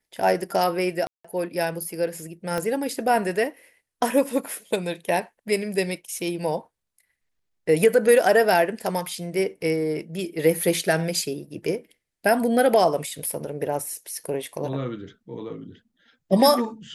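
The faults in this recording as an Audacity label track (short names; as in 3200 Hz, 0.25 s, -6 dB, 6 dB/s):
1.070000	1.250000	gap 0.175 s
2.580000	2.580000	pop -14 dBFS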